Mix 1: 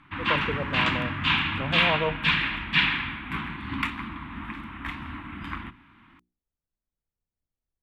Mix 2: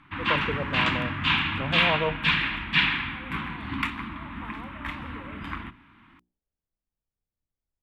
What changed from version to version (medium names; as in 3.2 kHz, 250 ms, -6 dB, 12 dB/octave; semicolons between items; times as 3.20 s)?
second voice: unmuted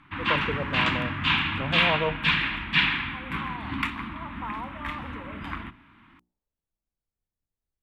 second voice: remove band-pass filter 360 Hz, Q 1.2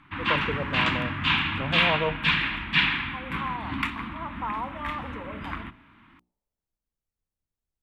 second voice +4.5 dB